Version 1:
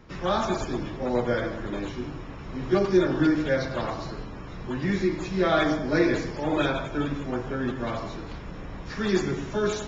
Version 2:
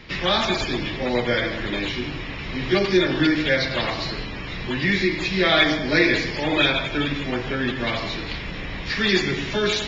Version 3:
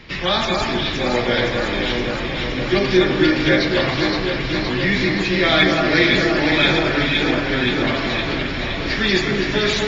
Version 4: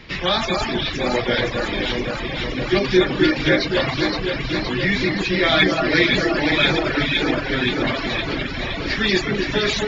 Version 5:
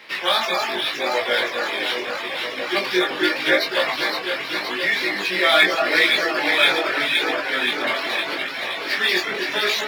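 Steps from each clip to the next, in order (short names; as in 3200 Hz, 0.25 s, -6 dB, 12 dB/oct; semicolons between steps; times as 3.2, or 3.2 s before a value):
band shelf 3000 Hz +13 dB; in parallel at -1.5 dB: compressor, threshold -30 dBFS, peak gain reduction 15 dB
echo with dull and thin repeats by turns 0.259 s, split 1600 Hz, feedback 83%, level -2.5 dB; gain +1.5 dB
reverb removal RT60 0.73 s
median filter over 5 samples; HPF 570 Hz 12 dB/oct; chorus 0.81 Hz, delay 18 ms, depth 4.7 ms; gain +5 dB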